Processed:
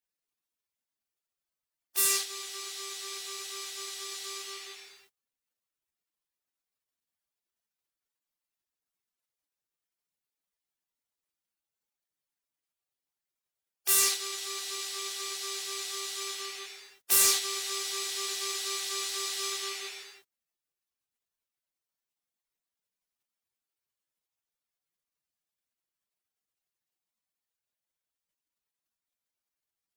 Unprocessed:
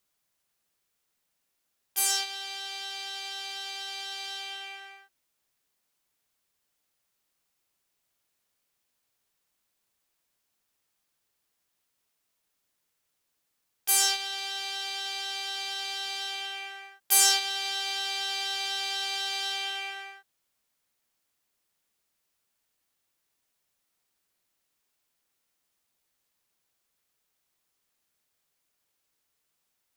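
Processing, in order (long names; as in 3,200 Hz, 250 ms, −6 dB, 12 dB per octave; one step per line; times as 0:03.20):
gate on every frequency bin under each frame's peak −15 dB weak
gain into a clipping stage and back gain 27 dB
level +8.5 dB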